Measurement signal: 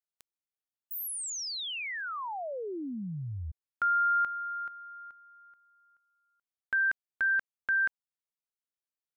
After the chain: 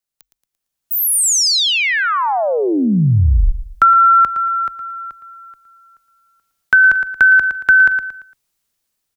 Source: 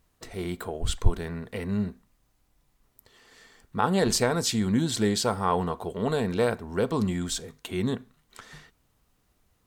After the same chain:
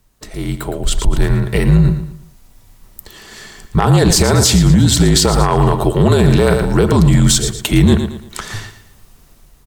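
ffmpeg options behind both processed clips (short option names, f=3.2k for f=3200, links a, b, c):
-af "aecho=1:1:114|228|342|456:0.266|0.0905|0.0308|0.0105,acompressor=threshold=-30dB:ratio=6:attack=81:release=45:knee=1:detection=rms,bass=f=250:g=6,treble=f=4k:g=4,dynaudnorm=f=390:g=5:m=13dB,afreqshift=-44,aeval=exprs='clip(val(0),-1,0.335)':c=same,alimiter=level_in=7.5dB:limit=-1dB:release=50:level=0:latency=1,volume=-1dB"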